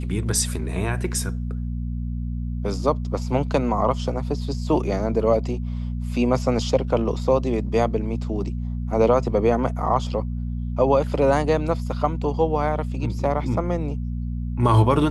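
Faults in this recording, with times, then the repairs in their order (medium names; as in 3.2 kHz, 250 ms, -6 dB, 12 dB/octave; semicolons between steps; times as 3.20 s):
hum 60 Hz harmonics 4 -27 dBFS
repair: de-hum 60 Hz, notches 4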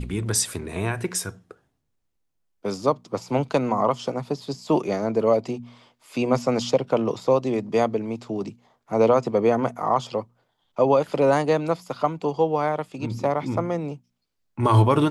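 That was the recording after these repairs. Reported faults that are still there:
nothing left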